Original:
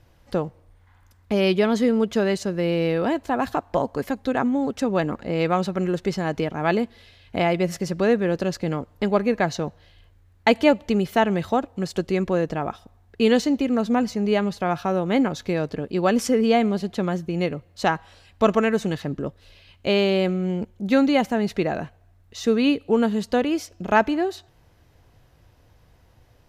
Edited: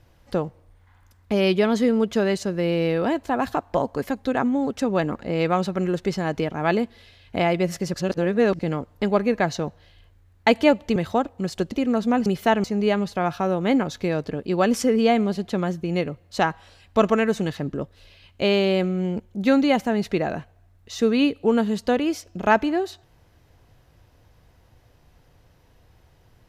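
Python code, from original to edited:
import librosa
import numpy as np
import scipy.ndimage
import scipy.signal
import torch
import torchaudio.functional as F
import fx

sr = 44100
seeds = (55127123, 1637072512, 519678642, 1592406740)

y = fx.edit(x, sr, fx.reverse_span(start_s=7.94, length_s=0.65),
    fx.move(start_s=10.96, length_s=0.38, to_s=14.09),
    fx.cut(start_s=12.1, length_s=1.45), tone=tone)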